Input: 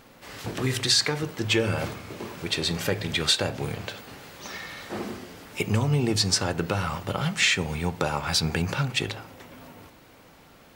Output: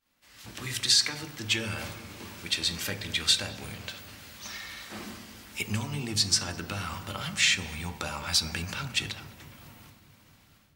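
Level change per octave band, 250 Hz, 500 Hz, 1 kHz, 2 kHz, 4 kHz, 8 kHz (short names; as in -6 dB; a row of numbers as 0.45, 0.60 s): -9.0, -13.0, -7.5, -3.0, -1.0, 0.0 dB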